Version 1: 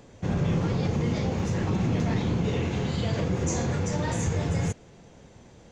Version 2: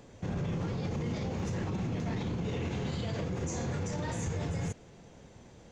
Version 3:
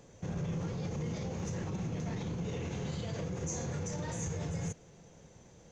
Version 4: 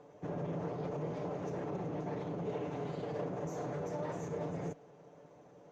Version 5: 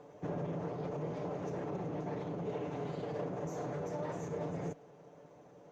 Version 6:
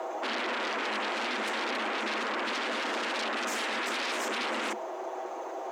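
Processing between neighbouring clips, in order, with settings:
brickwall limiter −24 dBFS, peak gain reduction 8 dB; level −2.5 dB
thirty-one-band graphic EQ 160 Hz +5 dB, 250 Hz −3 dB, 500 Hz +3 dB, 6,300 Hz +9 dB; level −4.5 dB
lower of the sound and its delayed copy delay 6.8 ms; resonant band-pass 550 Hz, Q 0.93; level +6 dB
speech leveller 0.5 s
sine wavefolder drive 19 dB, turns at −26.5 dBFS; frequency shifter +210 Hz; level −2.5 dB

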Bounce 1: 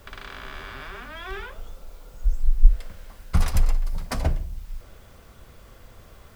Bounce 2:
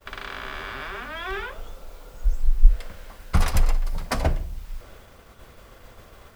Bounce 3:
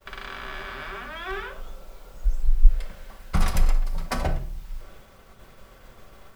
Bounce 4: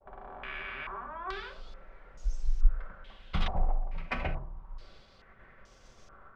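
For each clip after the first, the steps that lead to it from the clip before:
downward expander −44 dBFS; bass and treble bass −5 dB, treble −3 dB; level +5 dB
convolution reverb, pre-delay 5 ms, DRR 6.5 dB; level −3 dB
low-pass on a step sequencer 2.3 Hz 770–6,000 Hz; level −8.5 dB

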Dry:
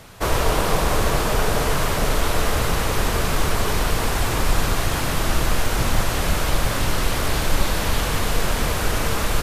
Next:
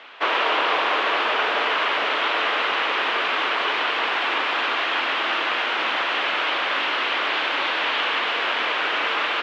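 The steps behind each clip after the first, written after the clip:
elliptic band-pass filter 290–3,100 Hz, stop band 60 dB
tilt shelving filter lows −9.5 dB, about 700 Hz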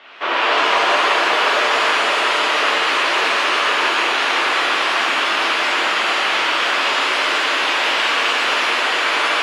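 reverb with rising layers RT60 2.1 s, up +7 semitones, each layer −8 dB, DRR −6 dB
level −2 dB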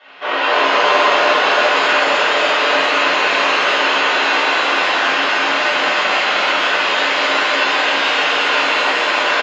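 single-tap delay 304 ms −4.5 dB
rectangular room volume 250 cubic metres, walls furnished, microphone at 6.5 metres
downsampling to 16,000 Hz
level −10 dB

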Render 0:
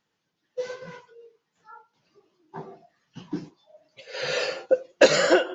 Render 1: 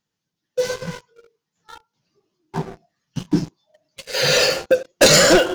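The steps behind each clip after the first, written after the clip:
leveller curve on the samples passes 3
bass and treble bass +9 dB, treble +9 dB
level −1.5 dB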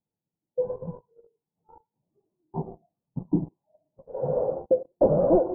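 Butterworth low-pass 920 Hz 48 dB per octave
level −5.5 dB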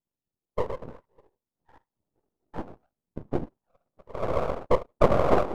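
dynamic equaliser 680 Hz, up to +4 dB, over −34 dBFS, Q 0.79
random phases in short frames
half-wave rectification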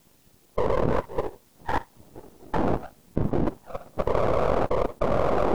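envelope flattener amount 100%
level −8 dB

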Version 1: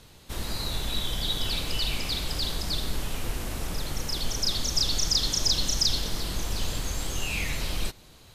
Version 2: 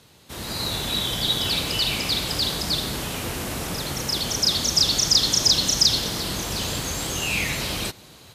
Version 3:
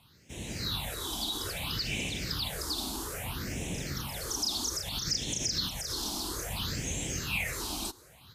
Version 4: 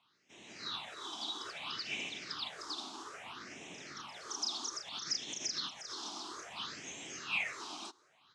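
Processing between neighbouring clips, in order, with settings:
high-pass filter 96 Hz 12 dB per octave; automatic gain control gain up to 7 dB
brickwall limiter −15.5 dBFS, peak gain reduction 9.5 dB; all-pass phaser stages 6, 0.61 Hz, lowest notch 130–1,300 Hz; level −5 dB
loudspeaker in its box 370–6,100 Hz, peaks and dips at 510 Hz −8 dB, 1,200 Hz +6 dB, 4,400 Hz −5 dB; expander for the loud parts 1.5 to 1, over −46 dBFS; level −1 dB

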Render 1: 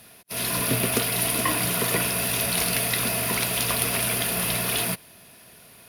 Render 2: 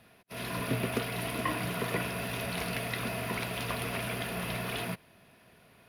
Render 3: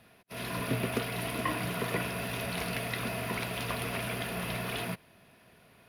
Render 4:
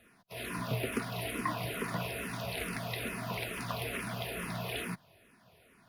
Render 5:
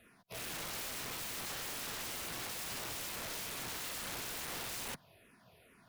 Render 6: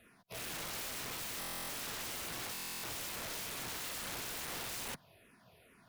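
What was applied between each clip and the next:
bass and treble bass +1 dB, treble −14 dB; level −6 dB
no processing that can be heard
frequency shifter mixed with the dry sound −2.3 Hz
wrap-around overflow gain 36 dB; level −1 dB
buffer that repeats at 0:01.39/0:02.53, samples 1,024, times 12

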